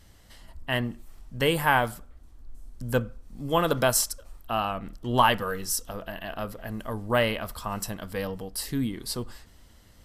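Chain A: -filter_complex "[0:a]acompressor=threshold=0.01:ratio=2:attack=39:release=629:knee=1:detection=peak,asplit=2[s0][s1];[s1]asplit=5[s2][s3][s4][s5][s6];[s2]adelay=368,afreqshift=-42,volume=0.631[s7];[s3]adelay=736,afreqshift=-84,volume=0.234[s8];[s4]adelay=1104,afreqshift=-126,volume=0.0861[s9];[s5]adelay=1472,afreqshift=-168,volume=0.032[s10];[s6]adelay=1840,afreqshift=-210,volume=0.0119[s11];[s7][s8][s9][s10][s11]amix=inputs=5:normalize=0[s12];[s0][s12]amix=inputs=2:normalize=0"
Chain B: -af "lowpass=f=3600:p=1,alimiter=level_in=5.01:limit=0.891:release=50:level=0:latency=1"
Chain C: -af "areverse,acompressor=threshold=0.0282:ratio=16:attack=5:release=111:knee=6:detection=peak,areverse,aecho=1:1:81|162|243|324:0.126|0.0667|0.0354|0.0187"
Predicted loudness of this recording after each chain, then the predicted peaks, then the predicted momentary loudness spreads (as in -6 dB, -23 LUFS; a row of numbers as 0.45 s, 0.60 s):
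-36.5 LUFS, -17.0 LUFS, -37.5 LUFS; -18.0 dBFS, -1.0 dBFS, -21.0 dBFS; 10 LU, 13 LU, 17 LU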